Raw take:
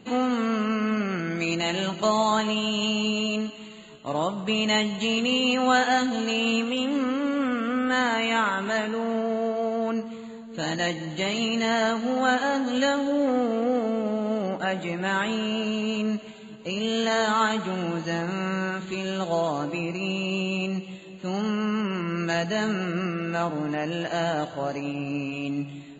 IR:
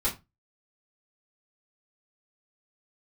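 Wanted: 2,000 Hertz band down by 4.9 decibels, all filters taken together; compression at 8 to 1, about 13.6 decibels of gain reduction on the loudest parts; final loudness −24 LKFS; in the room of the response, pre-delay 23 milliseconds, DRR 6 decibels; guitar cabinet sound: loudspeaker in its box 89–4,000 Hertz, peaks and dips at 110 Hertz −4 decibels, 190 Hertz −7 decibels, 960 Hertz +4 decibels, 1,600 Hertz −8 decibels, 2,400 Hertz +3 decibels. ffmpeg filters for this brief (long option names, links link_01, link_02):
-filter_complex "[0:a]equalizer=frequency=2000:width_type=o:gain=-4,acompressor=threshold=-32dB:ratio=8,asplit=2[link_01][link_02];[1:a]atrim=start_sample=2205,adelay=23[link_03];[link_02][link_03]afir=irnorm=-1:irlink=0,volume=-14dB[link_04];[link_01][link_04]amix=inputs=2:normalize=0,highpass=89,equalizer=frequency=110:width_type=q:width=4:gain=-4,equalizer=frequency=190:width_type=q:width=4:gain=-7,equalizer=frequency=960:width_type=q:width=4:gain=4,equalizer=frequency=1600:width_type=q:width=4:gain=-8,equalizer=frequency=2400:width_type=q:width=4:gain=3,lowpass=frequency=4000:width=0.5412,lowpass=frequency=4000:width=1.3066,volume=12dB"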